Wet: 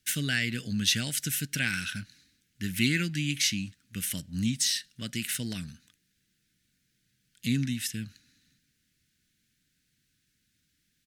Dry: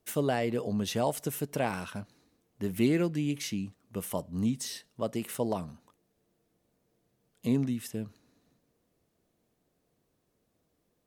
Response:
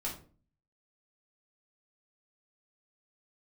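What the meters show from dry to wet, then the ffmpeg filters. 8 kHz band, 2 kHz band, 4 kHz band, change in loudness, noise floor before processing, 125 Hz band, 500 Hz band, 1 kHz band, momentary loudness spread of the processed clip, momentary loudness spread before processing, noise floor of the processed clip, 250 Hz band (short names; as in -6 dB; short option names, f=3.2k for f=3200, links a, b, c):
+10.0 dB, +10.5 dB, +12.0 dB, +2.5 dB, -76 dBFS, +2.5 dB, -15.0 dB, -13.0 dB, 12 LU, 11 LU, -75 dBFS, -1.5 dB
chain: -filter_complex "[0:a]firequalizer=gain_entry='entry(130,0);entry(280,-5);entry(400,-18);entry(650,-23);entry(1000,-25);entry(1500,7);entry(3900,10);entry(15000,2)':delay=0.05:min_phase=1,asplit=2[a][b];[b]aeval=exprs='sgn(val(0))*max(abs(val(0))-0.00224,0)':c=same,volume=-12dB[c];[a][c]amix=inputs=2:normalize=0,volume=1dB"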